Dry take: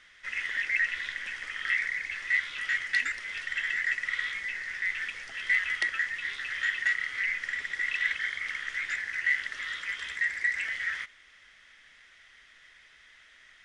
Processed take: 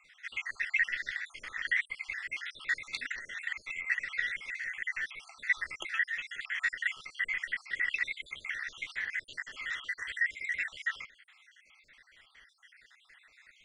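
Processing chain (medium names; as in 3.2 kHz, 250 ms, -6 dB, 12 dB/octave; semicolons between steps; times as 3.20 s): random holes in the spectrogram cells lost 63%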